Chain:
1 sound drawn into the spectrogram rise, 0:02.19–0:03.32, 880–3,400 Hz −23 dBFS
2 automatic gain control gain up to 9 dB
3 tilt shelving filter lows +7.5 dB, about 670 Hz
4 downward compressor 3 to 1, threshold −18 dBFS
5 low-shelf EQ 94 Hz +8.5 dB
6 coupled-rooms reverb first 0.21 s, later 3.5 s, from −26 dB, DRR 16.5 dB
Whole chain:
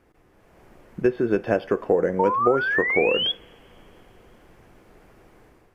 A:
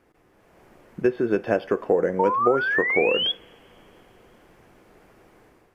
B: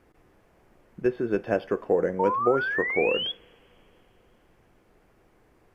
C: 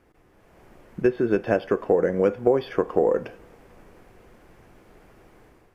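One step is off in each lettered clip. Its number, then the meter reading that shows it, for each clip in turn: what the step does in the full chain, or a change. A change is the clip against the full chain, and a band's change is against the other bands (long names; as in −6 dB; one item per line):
5, 125 Hz band −2.5 dB
2, 4 kHz band −2.0 dB
1, 2 kHz band −11.5 dB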